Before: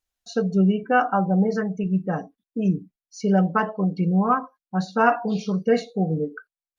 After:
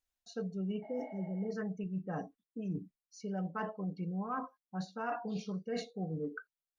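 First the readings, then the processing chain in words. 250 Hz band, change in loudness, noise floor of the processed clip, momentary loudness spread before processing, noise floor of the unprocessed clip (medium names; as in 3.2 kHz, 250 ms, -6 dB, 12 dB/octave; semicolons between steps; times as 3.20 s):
-16.0 dB, -16.5 dB, under -85 dBFS, 9 LU, under -85 dBFS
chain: spectral replace 0.85–1.42 s, 560–5000 Hz after; reverse; compression 6:1, threshold -30 dBFS, peak gain reduction 16 dB; reverse; trim -5.5 dB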